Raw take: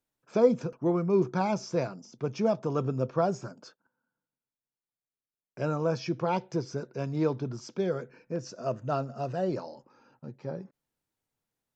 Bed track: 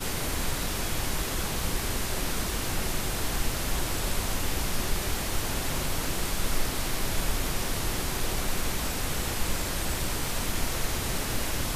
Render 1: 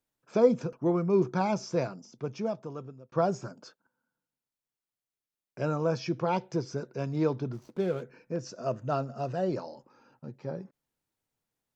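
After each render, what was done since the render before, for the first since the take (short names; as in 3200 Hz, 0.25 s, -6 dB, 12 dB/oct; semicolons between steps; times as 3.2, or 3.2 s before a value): 1.88–3.12 fade out; 7.53–8.03 median filter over 25 samples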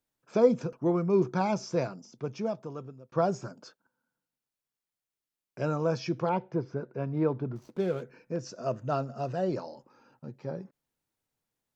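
6.29–7.56 LPF 2000 Hz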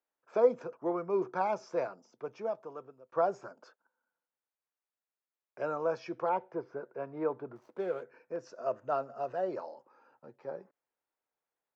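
three-band isolator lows -21 dB, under 390 Hz, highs -14 dB, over 2100 Hz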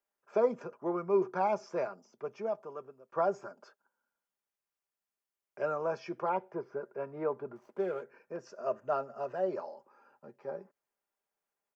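bell 3900 Hz -6 dB 0.27 oct; comb 5 ms, depth 45%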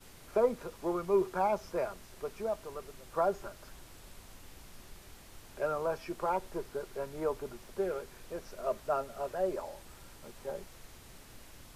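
add bed track -23.5 dB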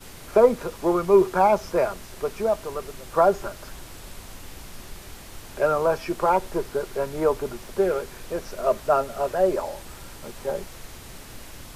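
gain +11.5 dB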